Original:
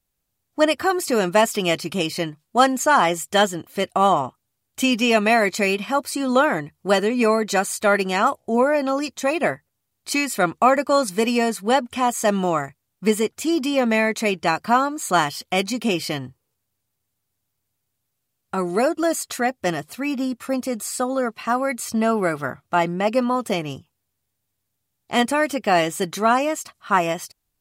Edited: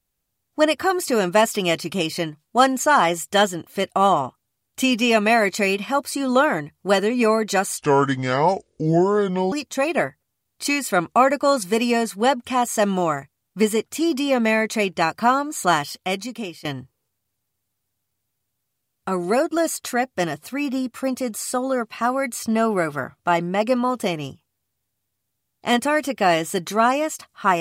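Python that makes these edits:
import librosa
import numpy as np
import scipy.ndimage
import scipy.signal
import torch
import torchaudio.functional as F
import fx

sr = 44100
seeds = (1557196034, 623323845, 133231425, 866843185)

y = fx.edit(x, sr, fx.speed_span(start_s=7.78, length_s=1.2, speed=0.69),
    fx.fade_out_to(start_s=15.27, length_s=0.84, floor_db=-17.5), tone=tone)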